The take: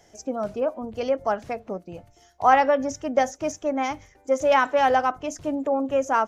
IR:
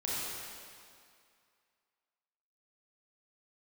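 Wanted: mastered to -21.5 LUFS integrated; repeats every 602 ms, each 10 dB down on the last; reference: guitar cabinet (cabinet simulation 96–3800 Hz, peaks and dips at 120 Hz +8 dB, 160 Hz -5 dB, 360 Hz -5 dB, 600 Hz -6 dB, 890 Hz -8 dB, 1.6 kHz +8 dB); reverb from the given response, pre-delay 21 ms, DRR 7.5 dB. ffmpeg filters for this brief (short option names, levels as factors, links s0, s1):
-filter_complex "[0:a]aecho=1:1:602|1204|1806|2408:0.316|0.101|0.0324|0.0104,asplit=2[s0][s1];[1:a]atrim=start_sample=2205,adelay=21[s2];[s1][s2]afir=irnorm=-1:irlink=0,volume=0.224[s3];[s0][s3]amix=inputs=2:normalize=0,highpass=96,equalizer=f=120:t=q:w=4:g=8,equalizer=f=160:t=q:w=4:g=-5,equalizer=f=360:t=q:w=4:g=-5,equalizer=f=600:t=q:w=4:g=-6,equalizer=f=890:t=q:w=4:g=-8,equalizer=f=1600:t=q:w=4:g=8,lowpass=f=3800:w=0.5412,lowpass=f=3800:w=1.3066,volume=1.5"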